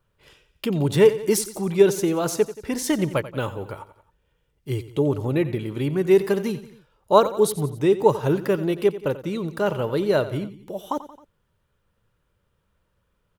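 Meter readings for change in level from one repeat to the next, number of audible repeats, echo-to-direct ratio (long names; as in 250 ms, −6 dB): −5.5 dB, 3, −13.5 dB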